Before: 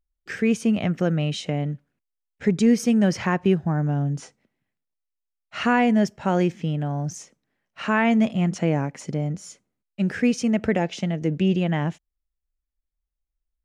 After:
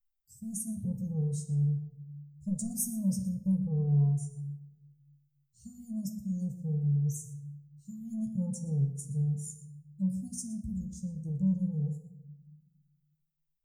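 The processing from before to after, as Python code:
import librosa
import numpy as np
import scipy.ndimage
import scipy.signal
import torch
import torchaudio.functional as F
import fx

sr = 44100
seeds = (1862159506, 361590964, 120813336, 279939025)

p1 = fx.bin_expand(x, sr, power=1.5)
p2 = scipy.signal.sosfilt(scipy.signal.cheby2(4, 70, [520.0, 2700.0], 'bandstop', fs=sr, output='sos'), p1)
p3 = 10.0 ** (-30.0 / 20.0) * np.tanh(p2 / 10.0 ** (-30.0 / 20.0))
p4 = fx.high_shelf(p3, sr, hz=5100.0, db=10.5)
p5 = fx.doubler(p4, sr, ms=15.0, db=-7.0)
p6 = p5 + fx.echo_single(p5, sr, ms=118, db=-18.0, dry=0)
p7 = fx.room_shoebox(p6, sr, seeds[0], volume_m3=320.0, walls='mixed', distance_m=0.54)
y = p7 * librosa.db_to_amplitude(3.0)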